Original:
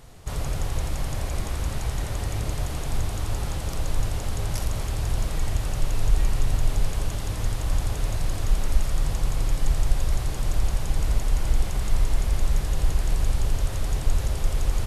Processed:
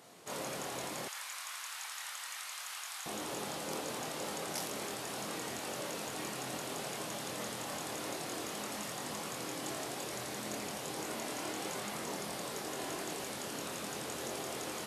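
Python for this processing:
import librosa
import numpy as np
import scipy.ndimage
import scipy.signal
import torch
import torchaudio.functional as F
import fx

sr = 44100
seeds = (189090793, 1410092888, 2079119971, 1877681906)

y = fx.chorus_voices(x, sr, voices=4, hz=0.32, base_ms=24, depth_ms=1.5, mix_pct=40)
y = fx.highpass(y, sr, hz=fx.steps((0.0, 210.0), (1.08, 1100.0), (3.06, 210.0)), slope=24)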